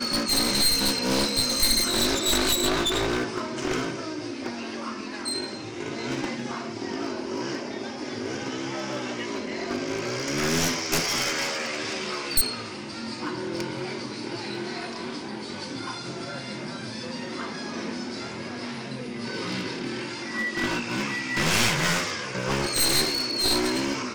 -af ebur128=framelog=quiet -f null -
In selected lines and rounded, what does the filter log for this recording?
Integrated loudness:
  I:         -26.6 LUFS
  Threshold: -36.6 LUFS
Loudness range:
  LRA:        10.3 LU
  Threshold: -47.6 LUFS
  LRA low:   -33.5 LUFS
  LRA high:  -23.1 LUFS